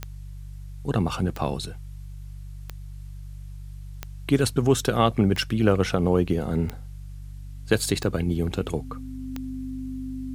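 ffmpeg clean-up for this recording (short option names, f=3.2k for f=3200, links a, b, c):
-af "adeclick=t=4,bandreject=f=48.6:t=h:w=4,bandreject=f=97.2:t=h:w=4,bandreject=f=145.8:t=h:w=4,bandreject=f=260:w=30,agate=range=-21dB:threshold=-30dB"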